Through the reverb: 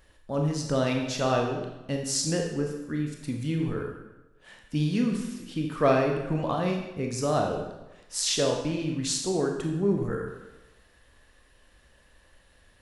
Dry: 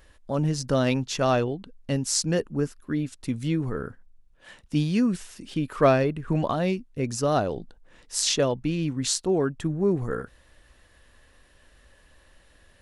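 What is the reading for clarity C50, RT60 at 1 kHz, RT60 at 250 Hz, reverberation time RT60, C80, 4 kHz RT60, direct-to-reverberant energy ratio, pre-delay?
4.0 dB, 1.0 s, 1.0 s, 1.0 s, 6.5 dB, 0.85 s, 1.5 dB, 23 ms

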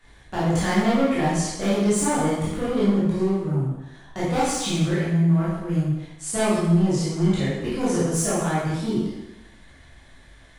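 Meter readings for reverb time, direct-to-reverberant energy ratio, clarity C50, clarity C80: 0.95 s, −10.0 dB, −1.0 dB, 2.0 dB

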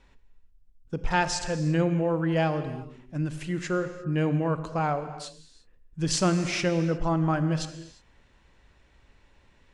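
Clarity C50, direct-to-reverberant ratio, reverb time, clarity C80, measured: 10.5 dB, 10.0 dB, non-exponential decay, 11.5 dB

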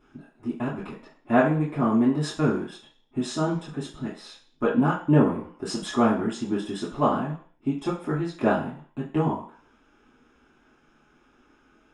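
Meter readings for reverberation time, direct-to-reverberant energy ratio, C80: 0.50 s, −7.5 dB, 11.5 dB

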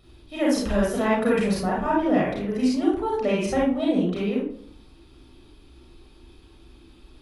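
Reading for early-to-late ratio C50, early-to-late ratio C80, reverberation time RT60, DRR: 1.0 dB, 7.5 dB, 0.60 s, −5.0 dB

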